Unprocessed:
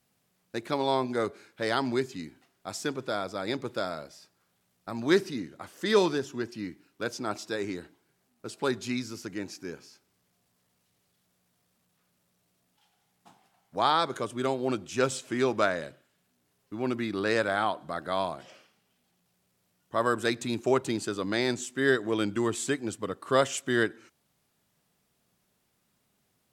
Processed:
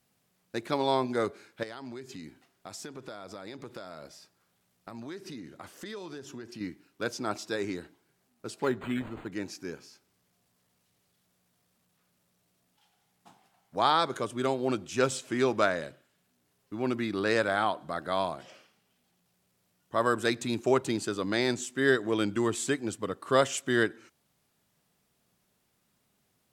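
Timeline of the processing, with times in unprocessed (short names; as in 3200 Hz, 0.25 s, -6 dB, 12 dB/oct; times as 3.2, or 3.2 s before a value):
1.63–6.61 compressor 8:1, threshold -38 dBFS
8.63–9.32 decimation joined by straight lines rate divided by 8×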